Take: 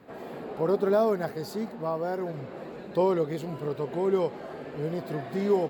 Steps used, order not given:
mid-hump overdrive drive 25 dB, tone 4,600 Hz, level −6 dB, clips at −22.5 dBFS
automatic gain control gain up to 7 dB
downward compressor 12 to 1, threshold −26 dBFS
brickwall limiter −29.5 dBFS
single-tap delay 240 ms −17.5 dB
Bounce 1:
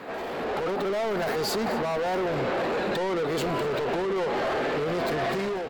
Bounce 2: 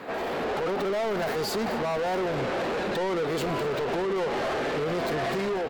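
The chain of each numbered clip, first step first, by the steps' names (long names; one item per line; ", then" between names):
downward compressor, then mid-hump overdrive, then brickwall limiter, then automatic gain control, then single-tap delay
brickwall limiter, then downward compressor, then automatic gain control, then mid-hump overdrive, then single-tap delay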